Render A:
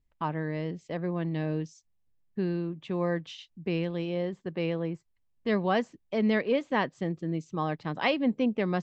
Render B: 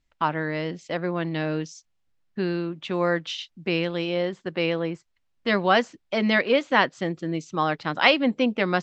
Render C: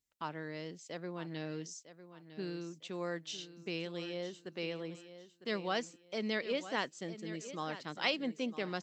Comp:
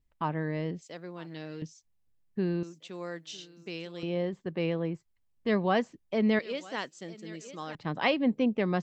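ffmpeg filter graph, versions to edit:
-filter_complex "[2:a]asplit=3[a][b][c];[0:a]asplit=4[d][e][f][g];[d]atrim=end=0.822[h];[a]atrim=start=0.818:end=1.622[i];[e]atrim=start=1.618:end=2.632[j];[b]atrim=start=2.628:end=4.032[k];[f]atrim=start=4.028:end=6.392[l];[c]atrim=start=6.388:end=7.752[m];[g]atrim=start=7.748[n];[h][i]acrossfade=d=0.004:c1=hsin:c2=hsin[o];[o][j]acrossfade=d=0.004:c1=hsin:c2=hsin[p];[p][k]acrossfade=d=0.004:c1=hsin:c2=hsin[q];[q][l]acrossfade=d=0.004:c1=hsin:c2=hsin[r];[r][m]acrossfade=d=0.004:c1=hsin:c2=hsin[s];[s][n]acrossfade=d=0.004:c1=hsin:c2=hsin"

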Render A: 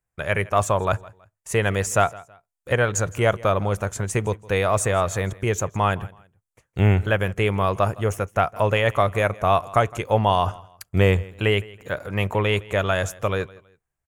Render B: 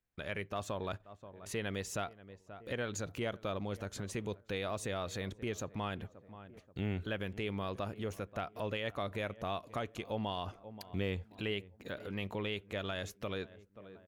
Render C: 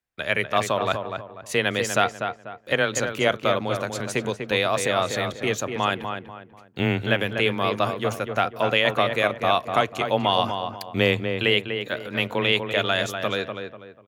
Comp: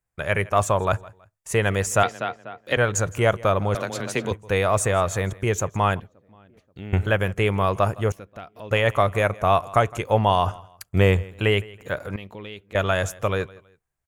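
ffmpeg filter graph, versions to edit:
-filter_complex "[2:a]asplit=2[a][b];[1:a]asplit=3[c][d][e];[0:a]asplit=6[f][g][h][i][j][k];[f]atrim=end=2.032[l];[a]atrim=start=2.028:end=2.772[m];[g]atrim=start=2.768:end=3.752[n];[b]atrim=start=3.748:end=4.312[o];[h]atrim=start=4.308:end=6.002[p];[c]atrim=start=5.998:end=6.932[q];[i]atrim=start=6.928:end=8.122[r];[d]atrim=start=8.118:end=8.712[s];[j]atrim=start=8.708:end=12.162[t];[e]atrim=start=12.158:end=12.752[u];[k]atrim=start=12.748[v];[l][m]acrossfade=d=0.004:c1=hsin:c2=hsin[w];[w][n]acrossfade=d=0.004:c1=hsin:c2=hsin[x];[x][o]acrossfade=d=0.004:c1=hsin:c2=hsin[y];[y][p]acrossfade=d=0.004:c1=hsin:c2=hsin[z];[z][q]acrossfade=d=0.004:c1=hsin:c2=hsin[aa];[aa][r]acrossfade=d=0.004:c1=hsin:c2=hsin[ab];[ab][s]acrossfade=d=0.004:c1=hsin:c2=hsin[ac];[ac][t]acrossfade=d=0.004:c1=hsin:c2=hsin[ad];[ad][u]acrossfade=d=0.004:c1=hsin:c2=hsin[ae];[ae][v]acrossfade=d=0.004:c1=hsin:c2=hsin"

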